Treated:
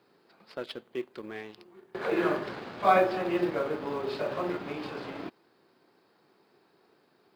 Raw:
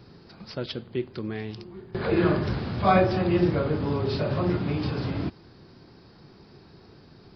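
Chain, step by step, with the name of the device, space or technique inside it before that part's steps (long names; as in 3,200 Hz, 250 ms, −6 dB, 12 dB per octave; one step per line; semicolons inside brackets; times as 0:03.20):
phone line with mismatched companding (band-pass filter 390–3,300 Hz; mu-law and A-law mismatch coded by A)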